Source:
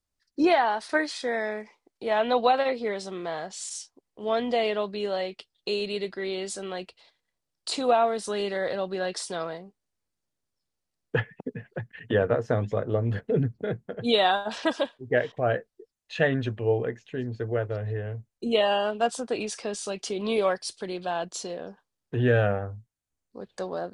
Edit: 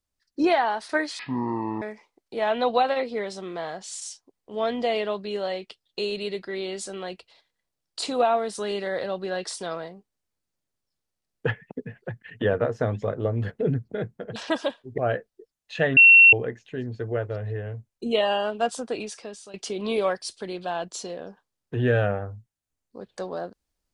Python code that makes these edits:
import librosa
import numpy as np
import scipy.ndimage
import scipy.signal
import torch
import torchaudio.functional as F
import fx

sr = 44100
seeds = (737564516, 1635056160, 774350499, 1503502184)

y = fx.edit(x, sr, fx.speed_span(start_s=1.19, length_s=0.32, speed=0.51),
    fx.cut(start_s=14.05, length_s=0.46),
    fx.cut(start_s=15.13, length_s=0.25),
    fx.bleep(start_s=16.37, length_s=0.36, hz=2720.0, db=-8.5),
    fx.fade_out_to(start_s=19.25, length_s=0.69, floor_db=-15.5), tone=tone)